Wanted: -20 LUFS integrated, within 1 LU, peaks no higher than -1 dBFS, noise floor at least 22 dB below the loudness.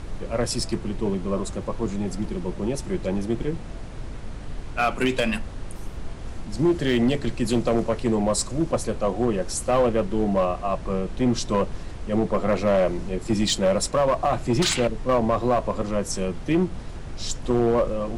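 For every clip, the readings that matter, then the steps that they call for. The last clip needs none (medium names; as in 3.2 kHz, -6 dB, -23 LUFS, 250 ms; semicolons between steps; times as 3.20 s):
clipped samples 1.3%; clipping level -14.5 dBFS; noise floor -36 dBFS; noise floor target -47 dBFS; loudness -24.5 LUFS; peak level -14.5 dBFS; loudness target -20.0 LUFS
-> clip repair -14.5 dBFS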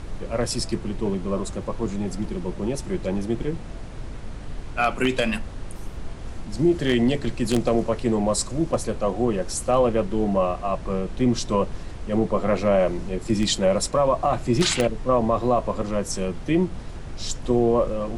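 clipped samples 0.0%; noise floor -36 dBFS; noise floor target -46 dBFS
-> noise print and reduce 10 dB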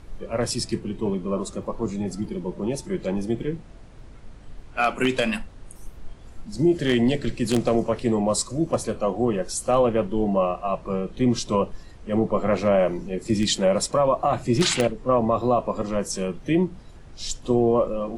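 noise floor -44 dBFS; noise floor target -46 dBFS
-> noise print and reduce 6 dB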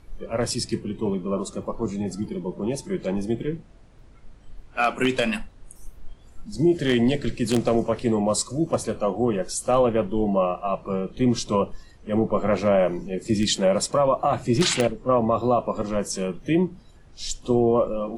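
noise floor -49 dBFS; loudness -24.0 LUFS; peak level -5.5 dBFS; loudness target -20.0 LUFS
-> trim +4 dB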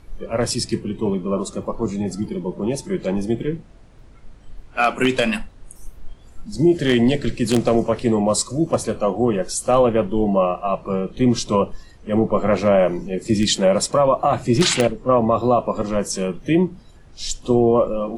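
loudness -20.0 LUFS; peak level -1.5 dBFS; noise floor -45 dBFS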